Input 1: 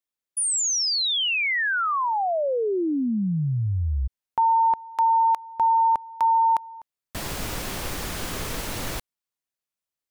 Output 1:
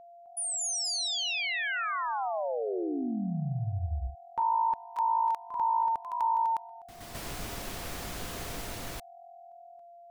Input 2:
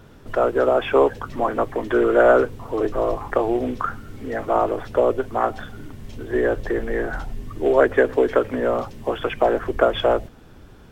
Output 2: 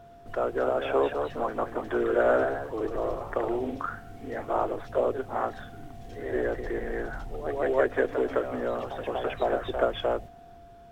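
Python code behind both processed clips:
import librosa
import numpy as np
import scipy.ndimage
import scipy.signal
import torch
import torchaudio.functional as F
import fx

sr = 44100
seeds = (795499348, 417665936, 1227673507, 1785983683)

y = x + 10.0 ** (-40.0 / 20.0) * np.sin(2.0 * np.pi * 690.0 * np.arange(len(x)) / sr)
y = fx.echo_pitch(y, sr, ms=259, semitones=1, count=2, db_per_echo=-6.0)
y = y * librosa.db_to_amplitude(-9.0)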